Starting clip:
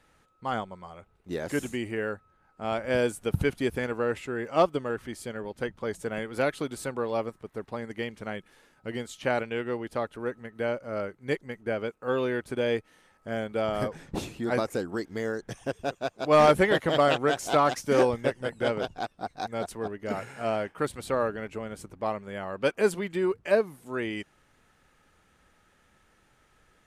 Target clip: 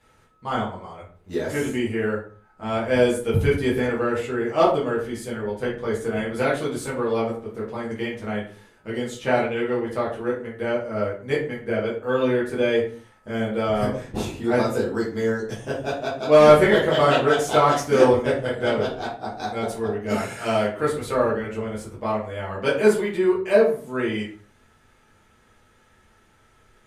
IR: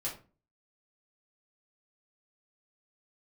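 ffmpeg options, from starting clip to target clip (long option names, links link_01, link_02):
-filter_complex "[0:a]asettb=1/sr,asplit=3[link_01][link_02][link_03];[link_01]atrim=end=20.094[link_04];[link_02]atrim=start=20.09:end=20.65,asetpts=PTS-STARTPTS,afade=type=in:duration=0.004:curve=qsin,afade=type=out:start_time=0.556:duration=0.004:curve=qsin,highshelf=frequency=2700:gain=11[link_05];[link_03]atrim=start=20.646[link_06];[link_04][link_05]acrossfade=duration=0.004:curve1=hsin:curve2=qsin[link_07];[link_07][link_06]acrossfade=duration=0.004:curve1=qsin:curve2=hsin[link_08];[1:a]atrim=start_sample=2205,afade=type=out:start_time=0.29:duration=0.01,atrim=end_sample=13230,asetrate=32634,aresample=44100[link_09];[link_08][link_09]afir=irnorm=-1:irlink=0,volume=1.5dB"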